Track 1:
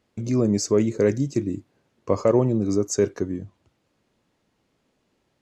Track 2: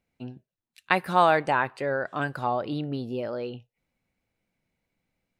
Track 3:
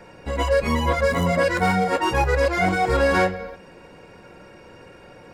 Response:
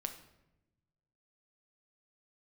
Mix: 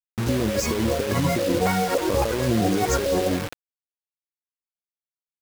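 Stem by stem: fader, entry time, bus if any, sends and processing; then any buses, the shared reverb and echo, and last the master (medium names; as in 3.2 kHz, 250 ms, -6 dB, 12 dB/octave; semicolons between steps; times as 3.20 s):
0.0 dB, 0.00 s, send -18 dB, expander -37 dBFS
-8.5 dB, 0.75 s, no send, rippled EQ curve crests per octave 1.8, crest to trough 12 dB; compression, threshold -24 dBFS, peak gain reduction 11.5 dB; cancelling through-zero flanger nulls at 0.45 Hz, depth 1 ms
-5.0 dB, 0.00 s, no send, LFO low-pass square 1.8 Hz 520–5000 Hz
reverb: on, RT60 0.95 s, pre-delay 6 ms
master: treble shelf 2.9 kHz -6.5 dB; compressor with a negative ratio -22 dBFS, ratio -1; bit crusher 5-bit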